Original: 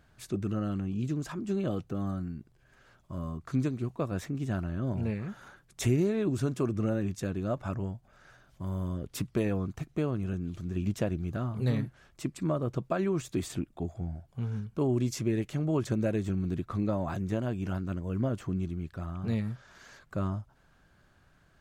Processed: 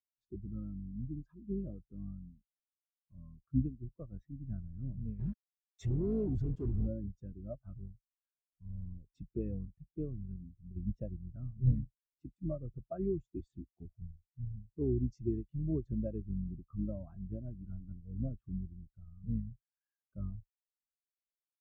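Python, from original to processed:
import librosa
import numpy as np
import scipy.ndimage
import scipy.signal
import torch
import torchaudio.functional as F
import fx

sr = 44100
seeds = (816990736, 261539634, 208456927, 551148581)

y = fx.octave_divider(x, sr, octaves=2, level_db=-3.0)
y = scipy.signal.sosfilt(scipy.signal.butter(2, 6000.0, 'lowpass', fs=sr, output='sos'), y)
y = fx.high_shelf(y, sr, hz=2700.0, db=9.0)
y = fx.quant_companded(y, sr, bits=2, at=(5.19, 6.87))
y = fx.spectral_expand(y, sr, expansion=2.5)
y = y * 10.0 ** (-2.0 / 20.0)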